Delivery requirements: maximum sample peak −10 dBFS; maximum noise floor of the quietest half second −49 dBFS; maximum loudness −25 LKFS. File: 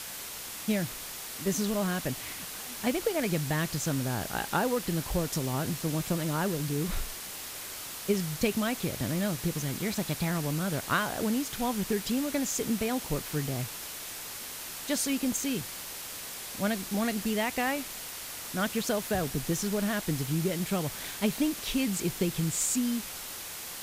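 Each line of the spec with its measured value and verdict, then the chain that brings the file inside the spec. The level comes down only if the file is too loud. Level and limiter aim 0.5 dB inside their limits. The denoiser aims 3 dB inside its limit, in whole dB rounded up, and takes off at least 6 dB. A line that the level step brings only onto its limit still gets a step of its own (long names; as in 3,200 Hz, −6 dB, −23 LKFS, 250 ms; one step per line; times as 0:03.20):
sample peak −13.0 dBFS: in spec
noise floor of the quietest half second −40 dBFS: out of spec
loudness −31.0 LKFS: in spec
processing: broadband denoise 12 dB, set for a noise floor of −40 dBFS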